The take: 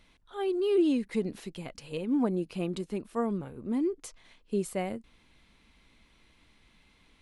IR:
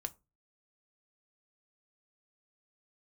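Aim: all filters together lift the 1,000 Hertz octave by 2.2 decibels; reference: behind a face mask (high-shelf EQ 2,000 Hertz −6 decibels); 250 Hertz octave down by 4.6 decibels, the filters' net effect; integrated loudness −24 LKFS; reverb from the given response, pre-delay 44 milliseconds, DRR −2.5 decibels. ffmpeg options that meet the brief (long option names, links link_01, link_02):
-filter_complex "[0:a]equalizer=frequency=250:width_type=o:gain=-6.5,equalizer=frequency=1000:width_type=o:gain=5,asplit=2[link_01][link_02];[1:a]atrim=start_sample=2205,adelay=44[link_03];[link_02][link_03]afir=irnorm=-1:irlink=0,volume=4dB[link_04];[link_01][link_04]amix=inputs=2:normalize=0,highshelf=frequency=2000:gain=-6,volume=5.5dB"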